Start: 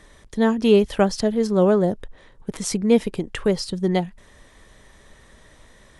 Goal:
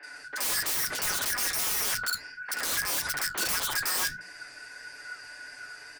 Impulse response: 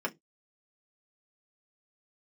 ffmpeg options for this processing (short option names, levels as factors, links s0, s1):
-filter_complex "[0:a]afftfilt=real='real(if(lt(b,272),68*(eq(floor(b/68),0)*2+eq(floor(b/68),1)*0+eq(floor(b/68),2)*3+eq(floor(b/68),3)*1)+mod(b,68),b),0)':imag='imag(if(lt(b,272),68*(eq(floor(b/68),0)*2+eq(floor(b/68),1)*0+eq(floor(b/68),2)*3+eq(floor(b/68),3)*1)+mod(b,68),b),0)':win_size=2048:overlap=0.75,bandreject=f=60:t=h:w=6,bandreject=f=120:t=h:w=6,bandreject=f=180:t=h:w=6,bandreject=f=240:t=h:w=6,bandreject=f=300:t=h:w=6,bandreject=f=360:t=h:w=6,bandreject=f=420:t=h:w=6,bandreject=f=480:t=h:w=6,acrossover=split=4900[s0][s1];[s1]acompressor=threshold=0.0112:ratio=4:attack=1:release=60[s2];[s0][s2]amix=inputs=2:normalize=0,aecho=1:1:6.9:0.85,asplit=2[s3][s4];[s4]alimiter=limit=0.211:level=0:latency=1:release=72,volume=1.33[s5];[s3][s5]amix=inputs=2:normalize=0,acompressor=threshold=0.126:ratio=1.5,aeval=exprs='(mod(8.91*val(0)+1,2)-1)/8.91':c=same,flanger=delay=6.9:depth=9.4:regen=-62:speed=1.6:shape=triangular,acrossover=split=200|2400[s6][s7][s8];[s8]adelay=30[s9];[s6]adelay=110[s10];[s10][s7][s9]amix=inputs=3:normalize=0"